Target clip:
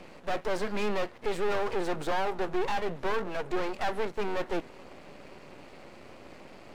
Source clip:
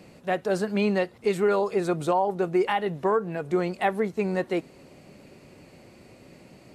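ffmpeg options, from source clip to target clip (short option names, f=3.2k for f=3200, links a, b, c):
-filter_complex "[0:a]asplit=2[a][b];[b]highpass=f=720:p=1,volume=24dB,asoftclip=type=tanh:threshold=-11.5dB[c];[a][c]amix=inputs=2:normalize=0,lowpass=f=1.4k:p=1,volume=-6dB,aeval=exprs='max(val(0),0)':c=same,volume=-5.5dB"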